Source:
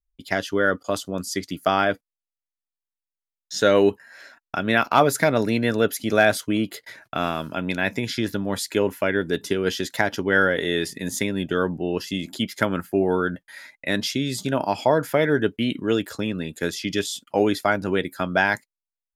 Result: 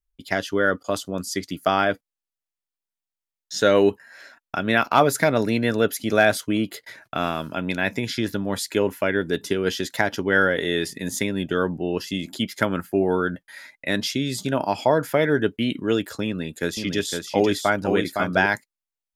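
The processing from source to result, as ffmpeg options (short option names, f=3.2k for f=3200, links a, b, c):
-filter_complex "[0:a]asettb=1/sr,asplit=3[a][b][c];[a]atrim=end=16.264[d];[b]atrim=start=16.26:end=18.46,asetpts=PTS-STARTPTS,afade=t=in:d=0.004:c=qsin,afade=t=out:st=2.196:d=0.004:c=qsin,aecho=1:1:510:0.562,atrim=end_sample=97020[e];[c]atrim=start=18.456[f];[d][e]acrossfade=d=0.004:c1=hsin:c2=qsin[g];[g][f]acrossfade=d=0.004:c1=qsin:c2=hsin"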